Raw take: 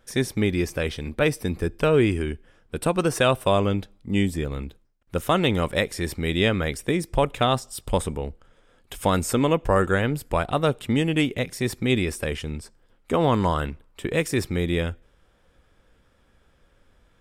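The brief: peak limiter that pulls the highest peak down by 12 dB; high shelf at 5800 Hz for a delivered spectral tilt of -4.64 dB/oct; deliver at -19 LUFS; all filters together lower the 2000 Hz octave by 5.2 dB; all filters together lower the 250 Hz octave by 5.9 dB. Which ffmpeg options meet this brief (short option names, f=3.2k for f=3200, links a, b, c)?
-af "equalizer=f=250:t=o:g=-8.5,equalizer=f=2k:t=o:g=-7.5,highshelf=f=5.8k:g=6,volume=13.5dB,alimiter=limit=-7.5dB:level=0:latency=1"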